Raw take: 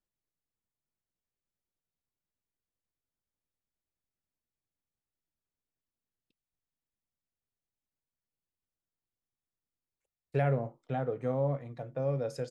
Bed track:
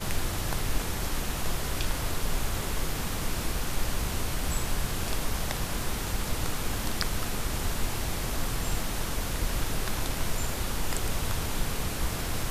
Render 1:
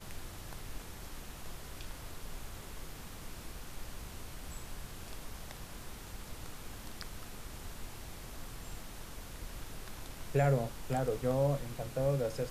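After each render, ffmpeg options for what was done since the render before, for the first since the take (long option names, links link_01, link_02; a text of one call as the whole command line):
ffmpeg -i in.wav -i bed.wav -filter_complex "[1:a]volume=-15.5dB[link_01];[0:a][link_01]amix=inputs=2:normalize=0" out.wav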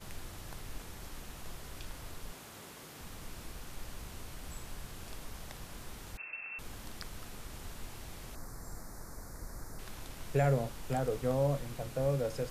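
ffmpeg -i in.wav -filter_complex "[0:a]asettb=1/sr,asplit=3[link_01][link_02][link_03];[link_01]atrim=end=2.324[link_04];[link_02]atrim=start=2.32:end=3.01,asetpts=PTS-STARTPTS,afade=type=in:duration=0.004:curve=qsin,afade=type=out:start_time=0.686:duration=0.004:curve=qsin,highpass=150[link_05];[link_03]atrim=start=3.006[link_06];[link_04][link_05]acrossfade=duration=0.004:curve1=hsin:curve2=qsin[link_07];[link_07][link_06]acrossfade=duration=0.004:curve1=qsin:curve2=hsin,asettb=1/sr,asplit=3[link_08][link_09][link_10];[link_08]atrim=end=6.174[link_11];[link_09]atrim=start=6.17:end=6.59,asetpts=PTS-STARTPTS,afade=type=in:duration=0.004:curve=qsin,afade=type=out:start_time=0.416:duration=0.004:curve=qsin,lowpass=frequency=2300:width_type=q:width=0.5098,lowpass=frequency=2300:width_type=q:width=0.6013,lowpass=frequency=2300:width_type=q:width=0.9,lowpass=frequency=2300:width_type=q:width=2.563,afreqshift=-2700[link_12];[link_10]atrim=start=6.586[link_13];[link_11][link_12]acrossfade=duration=0.004:curve1=hsin:curve2=qsin[link_14];[link_14][link_13]acrossfade=duration=0.004:curve1=qsin:curve2=hsin,asettb=1/sr,asplit=3[link_15][link_16][link_17];[link_15]atrim=end=8.354[link_18];[link_16]atrim=start=8.35:end=9.79,asetpts=PTS-STARTPTS,afade=type=in:duration=0.004:curve=qsin,afade=type=out:start_time=1.436:duration=0.004:curve=qsin,asuperstop=centerf=3000:order=4:qfactor=1[link_19];[link_17]atrim=start=9.786[link_20];[link_18][link_19]acrossfade=duration=0.004:curve1=hsin:curve2=qsin[link_21];[link_21][link_20]acrossfade=duration=0.004:curve1=qsin:curve2=hsin" out.wav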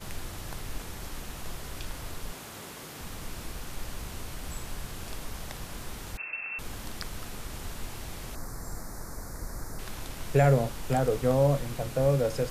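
ffmpeg -i in.wav -af "volume=7dB" out.wav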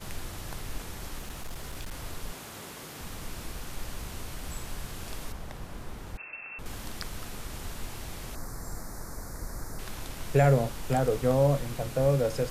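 ffmpeg -i in.wav -filter_complex "[0:a]asettb=1/sr,asplit=3[link_01][link_02][link_03];[link_01]atrim=end=1.184[link_04];[link_02]atrim=start=1.18:end=1.93,asetpts=PTS-STARTPTS,afade=type=in:duration=0.004:curve=qsin,afade=type=out:start_time=0.746:duration=0.004:curve=qsin,asoftclip=type=hard:threshold=-32.5dB[link_05];[link_03]atrim=start=1.926[link_06];[link_04][link_05]acrossfade=duration=0.004:curve1=hsin:curve2=qsin[link_07];[link_07][link_06]acrossfade=duration=0.004:curve1=qsin:curve2=hsin,asettb=1/sr,asplit=3[link_08][link_09][link_10];[link_08]atrim=end=5.324[link_11];[link_09]atrim=start=5.32:end=6.66,asetpts=PTS-STARTPTS,afade=type=in:duration=0.004:curve=qsin,afade=type=out:start_time=1.336:duration=0.004:curve=qsin,highshelf=frequency=2200:gain=-10[link_12];[link_10]atrim=start=6.656[link_13];[link_11][link_12]acrossfade=duration=0.004:curve1=hsin:curve2=qsin[link_14];[link_14][link_13]acrossfade=duration=0.004:curve1=qsin:curve2=hsin" out.wav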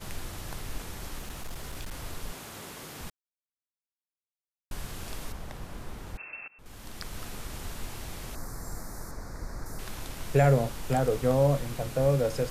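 ffmpeg -i in.wav -filter_complex "[0:a]asettb=1/sr,asplit=3[link_01][link_02][link_03];[link_01]atrim=end=9.114[link_04];[link_02]atrim=start=9.11:end=9.66,asetpts=PTS-STARTPTS,afade=type=in:duration=0.004:curve=qsin,afade=type=out:start_time=0.546:duration=0.004:curve=qsin,acrossover=split=6000[link_05][link_06];[link_06]acompressor=threshold=-59dB:ratio=4:attack=1:release=60[link_07];[link_05][link_07]amix=inputs=2:normalize=0[link_08];[link_03]atrim=start=9.656[link_09];[link_04][link_08]acrossfade=duration=0.004:curve1=hsin:curve2=qsin[link_10];[link_10][link_09]acrossfade=duration=0.004:curve1=qsin:curve2=hsin,asplit=4[link_11][link_12][link_13][link_14];[link_11]atrim=end=3.1,asetpts=PTS-STARTPTS,afade=type=out:start_time=3.096:duration=0.004:curve=hsin[link_15];[link_12]atrim=start=3.1:end=4.71,asetpts=PTS-STARTPTS,volume=0[link_16];[link_13]atrim=start=4.71:end=6.48,asetpts=PTS-STARTPTS,afade=type=in:duration=0.004:curve=hsin,afade=type=out:start_time=1.766:duration=0.004:curve=hsin:silence=0.0749894[link_17];[link_14]atrim=start=6.48,asetpts=PTS-STARTPTS,afade=type=in:duration=0.73:silence=0.0749894[link_18];[link_15][link_16][link_17][link_18]concat=n=4:v=0:a=1" out.wav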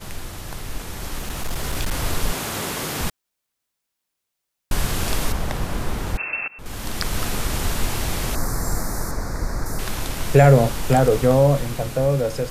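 ffmpeg -i in.wav -filter_complex "[0:a]asplit=2[link_01][link_02];[link_02]alimiter=limit=-20dB:level=0:latency=1,volume=-2dB[link_03];[link_01][link_03]amix=inputs=2:normalize=0,dynaudnorm=framelen=420:gausssize=7:maxgain=11dB" out.wav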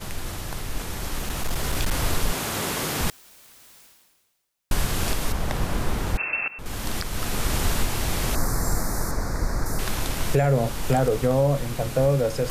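ffmpeg -i in.wav -af "alimiter=limit=-11dB:level=0:latency=1:release=494,areverse,acompressor=mode=upward:threshold=-26dB:ratio=2.5,areverse" out.wav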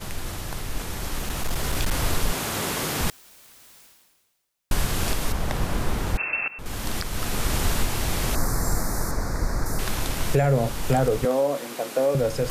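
ffmpeg -i in.wav -filter_complex "[0:a]asettb=1/sr,asplit=3[link_01][link_02][link_03];[link_01]atrim=end=11.254[link_04];[link_02]atrim=start=11.25:end=12.15,asetpts=PTS-STARTPTS,afade=type=in:duration=0.004:curve=qsin,afade=type=out:start_time=0.896:duration=0.004:curve=qsin,highpass=frequency=250:width=0.5412,highpass=frequency=250:width=1.3066[link_05];[link_03]atrim=start=12.146[link_06];[link_04][link_05]acrossfade=duration=0.004:curve1=hsin:curve2=qsin[link_07];[link_07][link_06]acrossfade=duration=0.004:curve1=qsin:curve2=hsin" out.wav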